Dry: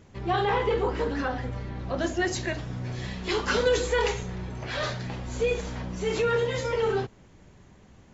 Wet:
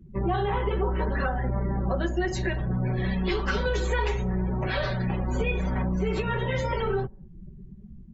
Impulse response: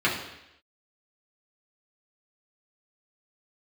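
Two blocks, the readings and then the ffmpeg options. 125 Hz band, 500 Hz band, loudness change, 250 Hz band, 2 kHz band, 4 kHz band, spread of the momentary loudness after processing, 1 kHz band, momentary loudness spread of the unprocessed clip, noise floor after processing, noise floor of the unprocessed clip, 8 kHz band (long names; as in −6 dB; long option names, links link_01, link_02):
+6.0 dB, −3.0 dB, +0.5 dB, +4.0 dB, −0.5 dB, −4.0 dB, 3 LU, −0.5 dB, 10 LU, −46 dBFS, −54 dBFS, can't be measured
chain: -filter_complex "[0:a]lowpass=frequency=4000:poles=1,afftdn=noise_reduction=34:noise_floor=-44,aecho=1:1:5.3:0.84,acrossover=split=110[link_01][link_02];[link_01]aeval=exprs='0.0335*(cos(1*acos(clip(val(0)/0.0335,-1,1)))-cos(1*PI/2))+0.00376*(cos(5*acos(clip(val(0)/0.0335,-1,1)))-cos(5*PI/2))':channel_layout=same[link_03];[link_02]acompressor=threshold=-35dB:ratio=5[link_04];[link_03][link_04]amix=inputs=2:normalize=0,volume=8dB"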